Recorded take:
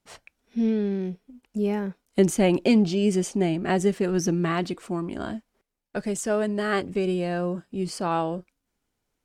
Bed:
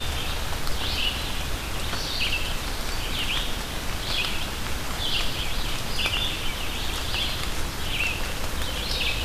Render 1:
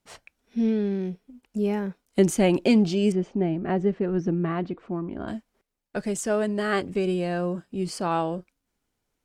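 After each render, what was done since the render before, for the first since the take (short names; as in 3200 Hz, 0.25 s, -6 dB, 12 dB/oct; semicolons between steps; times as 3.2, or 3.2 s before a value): 3.12–5.28 tape spacing loss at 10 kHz 38 dB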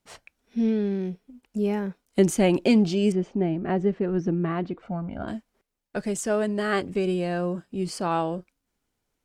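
4.82–5.23 comb 1.4 ms, depth 87%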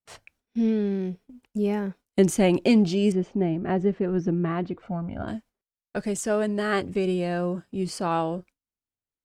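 gate with hold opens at -43 dBFS; bell 100 Hz +7 dB 0.48 oct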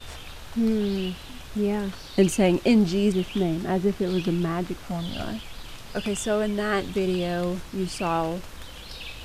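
add bed -12.5 dB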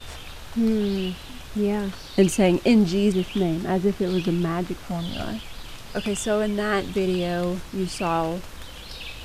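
gain +1.5 dB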